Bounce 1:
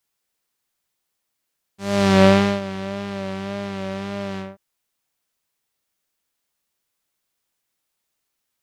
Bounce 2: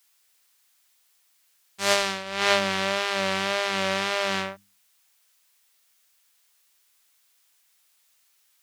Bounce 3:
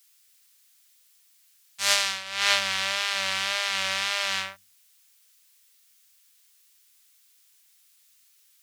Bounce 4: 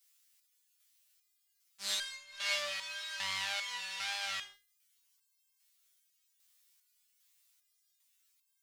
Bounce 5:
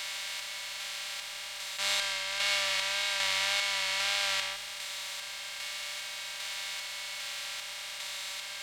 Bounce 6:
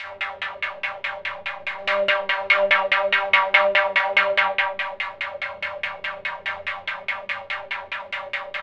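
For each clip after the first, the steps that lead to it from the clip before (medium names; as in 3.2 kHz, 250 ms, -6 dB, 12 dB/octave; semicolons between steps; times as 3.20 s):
tilt shelf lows -9 dB, about 670 Hz; hum notches 50/100/150/200/250/300 Hz; compressor with a negative ratio -22 dBFS, ratio -0.5
amplifier tone stack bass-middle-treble 10-0-10; trim +4.5 dB
resonator arpeggio 2.5 Hz 88–530 Hz
spectral levelling over time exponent 0.2
loudspeakers at several distances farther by 20 m -1 dB, 76 m -6 dB; spring tank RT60 1.1 s, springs 35/55 ms, chirp 45 ms, DRR -7 dB; LFO low-pass saw down 4.8 Hz 310–2500 Hz; trim +3 dB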